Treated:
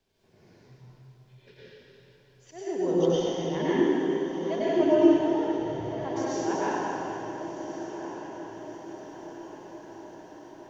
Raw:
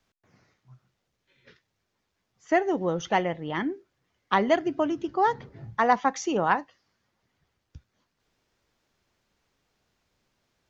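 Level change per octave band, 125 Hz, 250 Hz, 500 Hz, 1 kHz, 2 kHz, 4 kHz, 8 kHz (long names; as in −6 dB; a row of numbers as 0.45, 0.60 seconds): +2.0 dB, +5.0 dB, +2.5 dB, −7.5 dB, −7.5 dB, −0.5 dB, can't be measured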